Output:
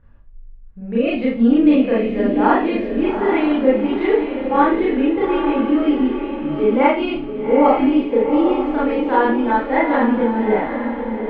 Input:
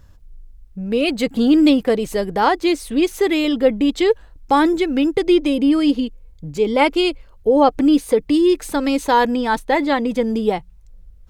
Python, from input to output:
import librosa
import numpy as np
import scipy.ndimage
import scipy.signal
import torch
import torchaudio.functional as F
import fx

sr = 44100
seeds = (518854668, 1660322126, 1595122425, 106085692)

p1 = scipy.signal.sosfilt(scipy.signal.butter(4, 2400.0, 'lowpass', fs=sr, output='sos'), x)
p2 = p1 + fx.echo_diffused(p1, sr, ms=817, feedback_pct=40, wet_db=-6.5, dry=0)
p3 = fx.rev_schroeder(p2, sr, rt60_s=0.37, comb_ms=27, drr_db=-7.5)
y = F.gain(torch.from_numpy(p3), -8.0).numpy()